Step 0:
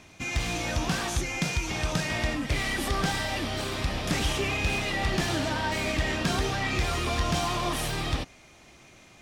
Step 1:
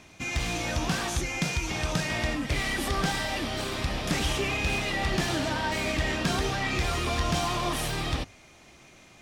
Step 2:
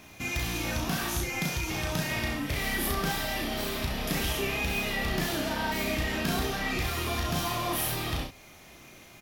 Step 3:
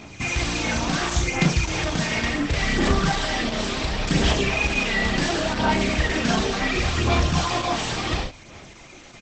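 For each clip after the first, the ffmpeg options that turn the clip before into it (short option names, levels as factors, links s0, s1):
-af "bandreject=f=50:t=h:w=6,bandreject=f=100:t=h:w=6"
-af "acompressor=threshold=0.0158:ratio=1.5,aexciter=amount=8.1:drive=1.4:freq=11000,aecho=1:1:35|66:0.668|0.422"
-filter_complex "[0:a]aphaser=in_gain=1:out_gain=1:delay=4.6:decay=0.46:speed=0.7:type=sinusoidal,asplit=2[s0][s1];[s1]adelay=41,volume=0.251[s2];[s0][s2]amix=inputs=2:normalize=0,volume=2.24" -ar 48000 -c:a libopus -b:a 12k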